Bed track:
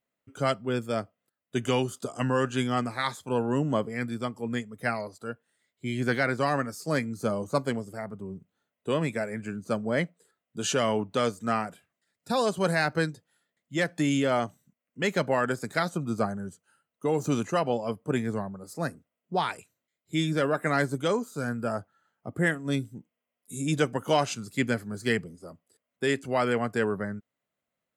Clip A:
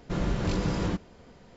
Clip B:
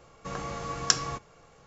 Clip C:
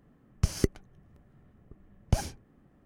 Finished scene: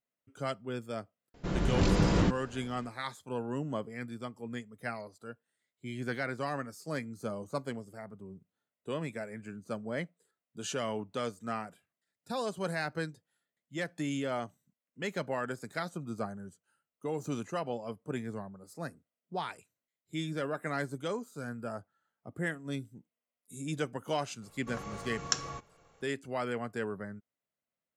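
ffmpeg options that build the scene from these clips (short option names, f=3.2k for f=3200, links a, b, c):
-filter_complex "[0:a]volume=-9dB[a];[1:a]dynaudnorm=f=150:g=5:m=7dB[b];[2:a]bandreject=f=4.9k:w=14[c];[b]atrim=end=1.56,asetpts=PTS-STARTPTS,volume=-4.5dB,afade=t=in:d=0.004:c=hsin,afade=t=out:st=1.556:d=0.004:c=hsin,adelay=1340[d];[c]atrim=end=1.66,asetpts=PTS-STARTPTS,volume=-7dB,afade=t=in:d=0.004:c=hsin,afade=t=out:st=1.656:d=0.004:c=hsin,adelay=24420[e];[a][d][e]amix=inputs=3:normalize=0"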